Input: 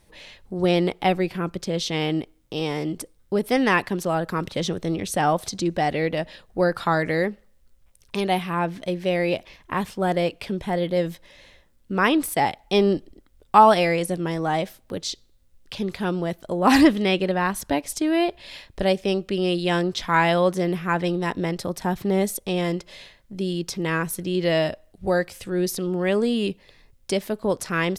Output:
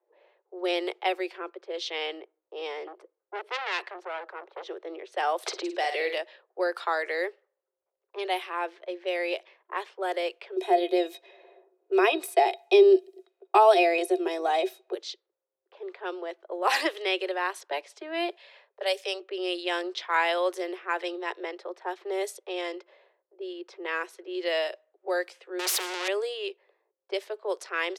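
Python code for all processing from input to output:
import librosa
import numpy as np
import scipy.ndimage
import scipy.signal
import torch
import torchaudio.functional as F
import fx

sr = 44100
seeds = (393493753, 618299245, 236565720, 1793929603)

y = fx.chain(x, sr, fx.highpass(hz=41.0, slope=12),
    fx.transformer_sat(knee_hz=3100.0), at=(2.87, 4.68))
y = fx.chain(y, sr, fx.room_flutter(wall_m=8.9, rt60_s=0.37),
    fx.band_squash(depth_pct=100), at=(5.46, 6.18))
y = fx.chain(y, sr, fx.peak_eq(hz=1600.0, db=-3.0, octaves=2.7),
    fx.small_body(hz=(380.0, 690.0, 2500.0, 3800.0), ring_ms=85, db=18),
    fx.band_squash(depth_pct=40), at=(10.56, 14.94))
y = fx.chain(y, sr, fx.cheby1_highpass(hz=410.0, order=6),
    fx.high_shelf(hz=4900.0, db=10.5), at=(18.36, 19.2))
y = fx.chain(y, sr, fx.leveller(passes=5),
    fx.spectral_comp(ratio=2.0), at=(25.59, 26.08))
y = scipy.signal.sosfilt(scipy.signal.butter(16, 350.0, 'highpass', fs=sr, output='sos'), y)
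y = fx.env_lowpass(y, sr, base_hz=660.0, full_db=-20.0)
y = fx.dynamic_eq(y, sr, hz=2800.0, q=0.72, threshold_db=-34.0, ratio=4.0, max_db=4)
y = y * 10.0 ** (-6.5 / 20.0)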